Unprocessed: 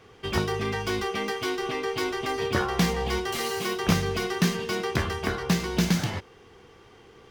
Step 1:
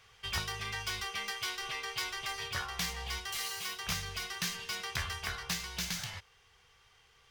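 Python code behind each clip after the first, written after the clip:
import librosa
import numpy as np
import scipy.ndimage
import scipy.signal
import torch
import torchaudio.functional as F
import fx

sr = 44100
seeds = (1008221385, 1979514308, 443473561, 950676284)

y = fx.tone_stack(x, sr, knobs='10-0-10')
y = fx.rider(y, sr, range_db=10, speed_s=0.5)
y = F.gain(torch.from_numpy(y), -1.5).numpy()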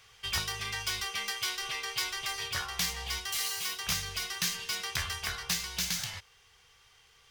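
y = fx.high_shelf(x, sr, hz=3100.0, db=7.0)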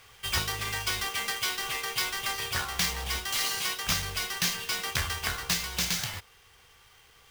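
y = fx.halfwave_hold(x, sr)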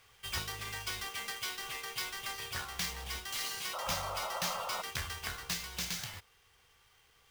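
y = fx.spec_paint(x, sr, seeds[0], shape='noise', start_s=3.73, length_s=1.09, low_hz=500.0, high_hz=1400.0, level_db=-31.0)
y = F.gain(torch.from_numpy(y), -8.5).numpy()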